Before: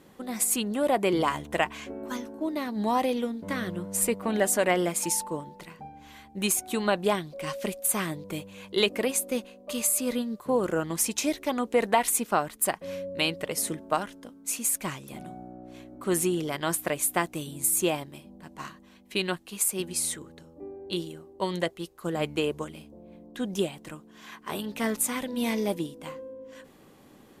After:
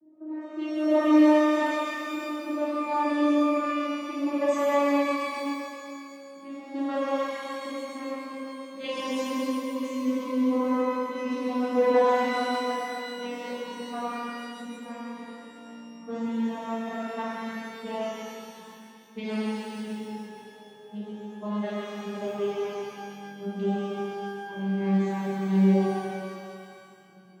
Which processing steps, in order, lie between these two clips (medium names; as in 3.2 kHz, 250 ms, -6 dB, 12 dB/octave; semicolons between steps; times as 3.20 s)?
vocoder on a note that slides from D#4, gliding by -9 st; level-controlled noise filter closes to 500 Hz, open at -22 dBFS; on a send: band-passed feedback delay 135 ms, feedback 69%, band-pass 2.6 kHz, level -3 dB; on the sum: pitch-shifted reverb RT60 1.9 s, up +12 st, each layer -8 dB, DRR -9 dB; trim -7.5 dB